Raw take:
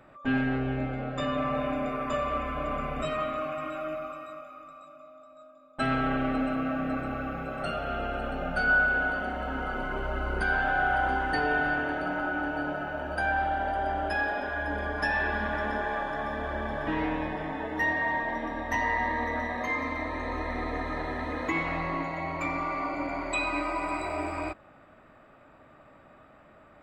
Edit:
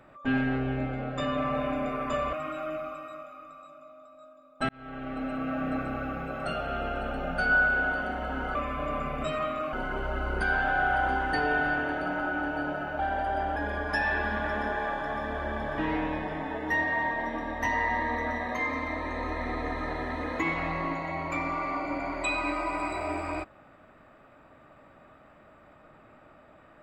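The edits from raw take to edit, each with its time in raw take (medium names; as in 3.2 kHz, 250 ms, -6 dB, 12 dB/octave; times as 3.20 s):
2.33–3.51 s: move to 9.73 s
5.87–6.85 s: fade in
12.99–13.48 s: delete
14.05–14.65 s: delete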